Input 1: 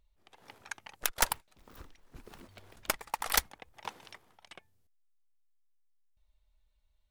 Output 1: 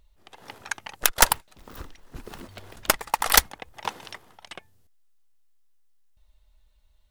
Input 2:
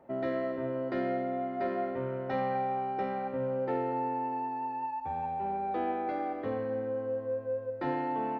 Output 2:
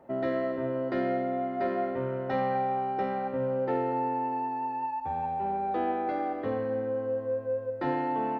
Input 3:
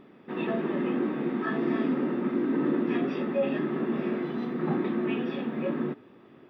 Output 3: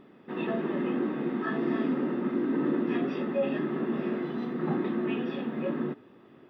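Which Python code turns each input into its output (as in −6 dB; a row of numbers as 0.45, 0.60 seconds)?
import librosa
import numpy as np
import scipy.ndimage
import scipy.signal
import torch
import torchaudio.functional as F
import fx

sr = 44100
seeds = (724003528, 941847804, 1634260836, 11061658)

y = fx.notch(x, sr, hz=2300.0, q=19.0)
y = y * 10.0 ** (-30 / 20.0) / np.sqrt(np.mean(np.square(y)))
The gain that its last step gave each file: +10.5, +3.0, −1.0 decibels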